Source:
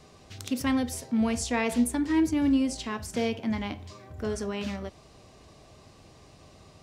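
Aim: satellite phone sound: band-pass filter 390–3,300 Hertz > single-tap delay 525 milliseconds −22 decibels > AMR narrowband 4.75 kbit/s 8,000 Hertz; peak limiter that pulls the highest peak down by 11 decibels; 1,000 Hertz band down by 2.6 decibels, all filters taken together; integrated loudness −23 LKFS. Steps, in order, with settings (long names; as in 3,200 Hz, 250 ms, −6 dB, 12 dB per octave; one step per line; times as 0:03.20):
parametric band 1,000 Hz −3 dB
brickwall limiter −25 dBFS
band-pass filter 390–3,300 Hz
single-tap delay 525 ms −22 dB
level +18 dB
AMR narrowband 4.75 kbit/s 8,000 Hz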